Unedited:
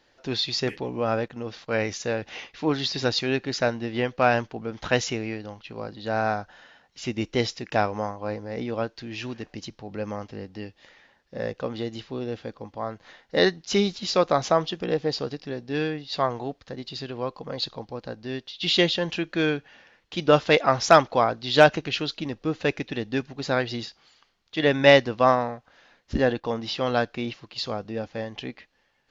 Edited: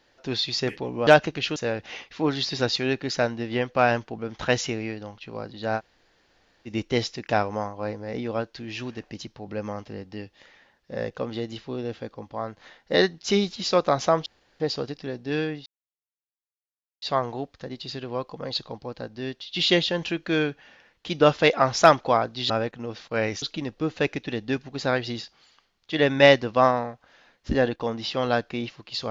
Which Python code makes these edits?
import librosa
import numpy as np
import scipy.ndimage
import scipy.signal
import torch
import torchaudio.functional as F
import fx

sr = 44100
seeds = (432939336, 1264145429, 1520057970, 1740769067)

y = fx.edit(x, sr, fx.swap(start_s=1.07, length_s=0.92, other_s=21.57, other_length_s=0.49),
    fx.room_tone_fill(start_s=6.21, length_s=0.9, crossfade_s=0.06),
    fx.room_tone_fill(start_s=14.69, length_s=0.34),
    fx.insert_silence(at_s=16.09, length_s=1.36), tone=tone)